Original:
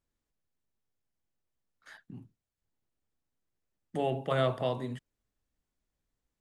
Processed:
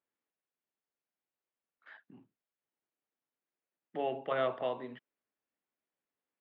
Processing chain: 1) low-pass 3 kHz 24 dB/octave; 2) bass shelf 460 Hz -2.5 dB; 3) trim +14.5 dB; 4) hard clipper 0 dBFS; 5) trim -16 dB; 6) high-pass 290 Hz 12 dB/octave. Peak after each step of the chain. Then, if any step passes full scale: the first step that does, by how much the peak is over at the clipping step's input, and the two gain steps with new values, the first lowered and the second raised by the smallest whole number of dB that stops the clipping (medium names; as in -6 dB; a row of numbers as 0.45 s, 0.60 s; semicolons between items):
-16.5 dBFS, -18.0 dBFS, -3.5 dBFS, -3.5 dBFS, -19.5 dBFS, -19.0 dBFS; nothing clips